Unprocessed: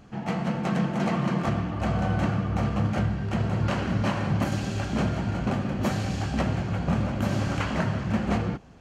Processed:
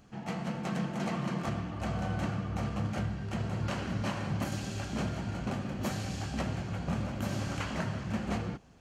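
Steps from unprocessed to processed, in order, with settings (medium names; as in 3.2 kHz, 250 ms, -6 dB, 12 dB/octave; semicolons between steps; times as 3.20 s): treble shelf 4.2 kHz +8 dB; trim -8 dB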